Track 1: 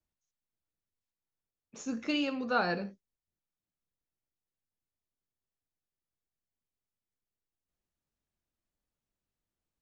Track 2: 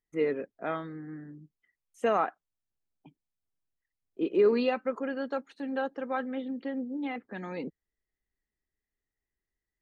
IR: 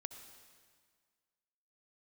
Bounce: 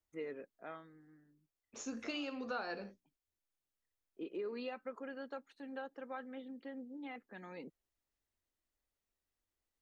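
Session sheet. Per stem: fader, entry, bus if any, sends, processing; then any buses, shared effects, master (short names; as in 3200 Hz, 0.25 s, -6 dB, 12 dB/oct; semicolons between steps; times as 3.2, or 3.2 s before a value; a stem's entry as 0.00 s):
-1.0 dB, 0.00 s, no send, bell 160 Hz -14 dB 0.58 oct; notches 60/120/180/240/300 Hz
-9.5 dB, 0.00 s, no send, low shelf 480 Hz -5 dB; auto duck -16 dB, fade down 1.40 s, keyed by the first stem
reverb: off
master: compressor 4:1, threshold -39 dBFS, peak gain reduction 12 dB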